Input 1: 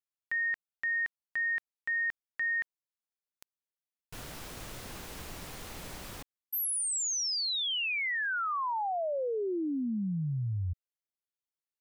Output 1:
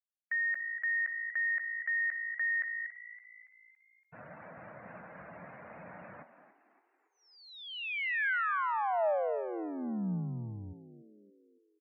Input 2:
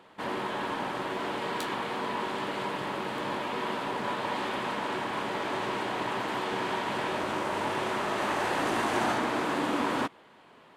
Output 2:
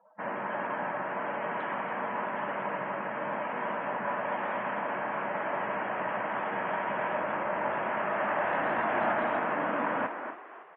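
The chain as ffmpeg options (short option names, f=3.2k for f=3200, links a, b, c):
-filter_complex "[0:a]highpass=170,equalizer=f=180:t=q:w=4:g=4,equalizer=f=280:t=q:w=4:g=-5,equalizer=f=390:t=q:w=4:g=-9,equalizer=f=620:t=q:w=4:g=6,equalizer=f=1.6k:t=q:w=4:g=3,lowpass=f=2.4k:w=0.5412,lowpass=f=2.4k:w=1.3066,asplit=2[a][b];[b]adelay=240,highpass=300,lowpass=3.4k,asoftclip=type=hard:threshold=-24dB,volume=-7dB[c];[a][c]amix=inputs=2:normalize=0,afftdn=nr=30:nf=-49,asplit=2[d][e];[e]asplit=5[f][g][h][i][j];[f]adelay=282,afreqshift=56,volume=-14dB[k];[g]adelay=564,afreqshift=112,volume=-20.2dB[l];[h]adelay=846,afreqshift=168,volume=-26.4dB[m];[i]adelay=1128,afreqshift=224,volume=-32.6dB[n];[j]adelay=1410,afreqshift=280,volume=-38.8dB[o];[k][l][m][n][o]amix=inputs=5:normalize=0[p];[d][p]amix=inputs=2:normalize=0,volume=-1.5dB"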